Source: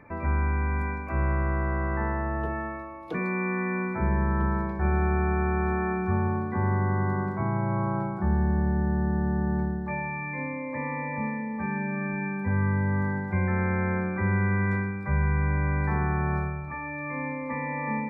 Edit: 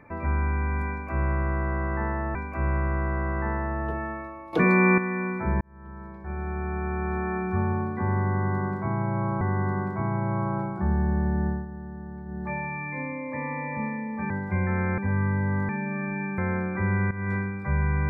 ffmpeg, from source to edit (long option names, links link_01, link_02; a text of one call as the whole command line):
ffmpeg -i in.wav -filter_complex "[0:a]asplit=13[link_01][link_02][link_03][link_04][link_05][link_06][link_07][link_08][link_09][link_10][link_11][link_12][link_13];[link_01]atrim=end=2.352[link_14];[link_02]atrim=start=0.898:end=3.082[link_15];[link_03]atrim=start=3.078:end=3.532,asetpts=PTS-STARTPTS,volume=9.5dB[link_16];[link_04]atrim=start=3.528:end=4.16,asetpts=PTS-STARTPTS,afade=type=out:start_time=0.628:duration=0.004:curve=hsin[link_17];[link_05]atrim=start=4.16:end=7.962,asetpts=PTS-STARTPTS,afade=type=in:duration=1.96[link_18];[link_06]atrim=start=6.818:end=9.07,asetpts=PTS-STARTPTS,afade=type=out:start_time=2.062:duration=0.19:silence=0.251189[link_19];[link_07]atrim=start=9.07:end=9.66,asetpts=PTS-STARTPTS,volume=-12dB[link_20];[link_08]atrim=start=9.66:end=11.712,asetpts=PTS-STARTPTS,afade=type=in:duration=0.19:silence=0.251189[link_21];[link_09]atrim=start=13.108:end=13.792[link_22];[link_10]atrim=start=12.398:end=13.112[link_23];[link_11]atrim=start=11.708:end=12.402[link_24];[link_12]atrim=start=13.788:end=14.52,asetpts=PTS-STARTPTS,afade=type=out:start_time=0.728:duration=0.004:curve=hsin:silence=0.199526[link_25];[link_13]atrim=start=14.52,asetpts=PTS-STARTPTS,afade=type=in:duration=0.25:silence=0.199526[link_26];[link_14][link_15]acrossfade=duration=0.004:curve1=hsin:curve2=hsin[link_27];[link_27][link_16]acrossfade=duration=0.004:curve1=hsin:curve2=hsin[link_28];[link_17][link_18]concat=n=2:v=0:a=1[link_29];[link_28][link_29]acrossfade=duration=0.004:curve1=hsin:curve2=hsin[link_30];[link_19][link_20][link_21]concat=n=3:v=0:a=1[link_31];[link_30][link_31]acrossfade=duration=0.004:curve1=hsin:curve2=hsin[link_32];[link_32][link_22]acrossfade=duration=0.004:curve1=hsin:curve2=hsin[link_33];[link_33][link_23]acrossfade=duration=0.004:curve1=hsin:curve2=hsin[link_34];[link_34][link_24]acrossfade=duration=0.004:curve1=hsin:curve2=hsin[link_35];[link_25][link_26]concat=n=2:v=0:a=1[link_36];[link_35][link_36]acrossfade=duration=0.004:curve1=hsin:curve2=hsin" out.wav